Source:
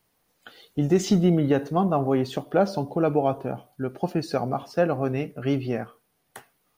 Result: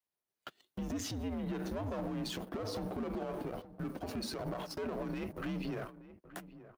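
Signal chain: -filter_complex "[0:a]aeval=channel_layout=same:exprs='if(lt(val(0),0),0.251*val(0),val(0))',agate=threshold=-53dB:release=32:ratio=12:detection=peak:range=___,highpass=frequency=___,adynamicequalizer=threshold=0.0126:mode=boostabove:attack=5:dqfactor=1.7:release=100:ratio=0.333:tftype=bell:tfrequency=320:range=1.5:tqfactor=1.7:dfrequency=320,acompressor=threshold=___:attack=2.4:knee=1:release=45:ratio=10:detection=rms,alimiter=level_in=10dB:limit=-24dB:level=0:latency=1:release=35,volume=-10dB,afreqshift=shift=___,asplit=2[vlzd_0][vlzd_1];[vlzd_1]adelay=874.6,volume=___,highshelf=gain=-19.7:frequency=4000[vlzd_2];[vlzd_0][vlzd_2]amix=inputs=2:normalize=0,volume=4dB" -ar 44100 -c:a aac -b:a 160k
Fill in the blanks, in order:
-24dB, 250, -36dB, -95, -15dB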